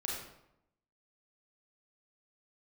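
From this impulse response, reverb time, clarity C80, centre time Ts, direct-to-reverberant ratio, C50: 0.80 s, 4.5 dB, 58 ms, -3.5 dB, 1.0 dB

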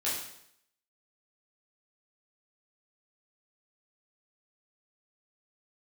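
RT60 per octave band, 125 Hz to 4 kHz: 0.70, 0.70, 0.70, 0.70, 0.70, 0.70 s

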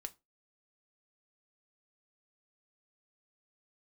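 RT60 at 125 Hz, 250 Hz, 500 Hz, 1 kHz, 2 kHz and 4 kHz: 0.25, 0.30, 0.25, 0.25, 0.20, 0.20 s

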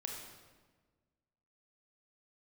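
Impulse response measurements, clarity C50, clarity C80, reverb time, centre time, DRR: 2.5 dB, 4.5 dB, 1.4 s, 57 ms, 0.5 dB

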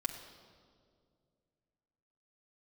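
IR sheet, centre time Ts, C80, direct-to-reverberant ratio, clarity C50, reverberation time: 29 ms, 9.0 dB, -0.5 dB, 8.0 dB, 2.2 s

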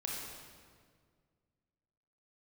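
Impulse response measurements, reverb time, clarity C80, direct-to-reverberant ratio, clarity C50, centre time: 1.9 s, 1.5 dB, -3.0 dB, -0.5 dB, 98 ms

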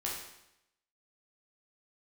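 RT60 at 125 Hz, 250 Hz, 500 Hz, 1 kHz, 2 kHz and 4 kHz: 0.85, 0.85, 0.85, 0.85, 0.85, 0.80 s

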